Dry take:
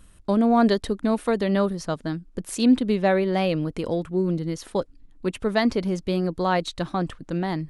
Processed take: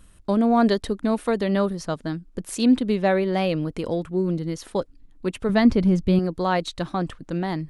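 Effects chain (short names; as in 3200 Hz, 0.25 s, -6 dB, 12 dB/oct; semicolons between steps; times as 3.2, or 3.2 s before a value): 5.49–6.19 tone controls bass +11 dB, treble -4 dB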